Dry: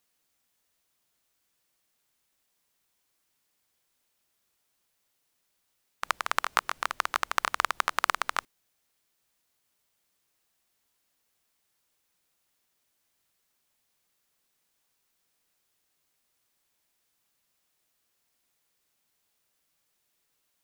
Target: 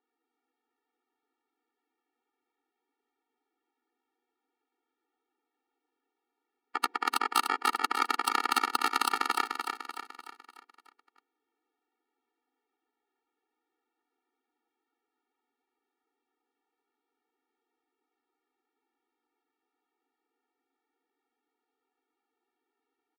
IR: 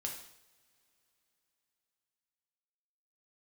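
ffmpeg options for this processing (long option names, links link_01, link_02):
-filter_complex "[0:a]aeval=exprs='0.794*(cos(1*acos(clip(val(0)/0.794,-1,1)))-cos(1*PI/2))+0.158*(cos(3*acos(clip(val(0)/0.794,-1,1)))-cos(3*PI/2))+0.0398*(cos(4*acos(clip(val(0)/0.794,-1,1)))-cos(4*PI/2))':channel_layout=same,atempo=0.89,acrossover=split=110|1500[link_01][link_02][link_03];[link_02]asoftclip=type=tanh:threshold=-22.5dB[link_04];[link_01][link_04][link_03]amix=inputs=3:normalize=0,adynamicsmooth=sensitivity=5:basefreq=1600,highshelf=frequency=5100:gain=-6.5,aeval=exprs='0.376*sin(PI/2*3.16*val(0)/0.376)':channel_layout=same,aecho=1:1:297|594|891|1188|1485|1782:0.531|0.26|0.127|0.0625|0.0306|0.015,afftfilt=real='re*eq(mod(floor(b*sr/1024/240),2),1)':imag='im*eq(mod(floor(b*sr/1024/240),2),1)':win_size=1024:overlap=0.75"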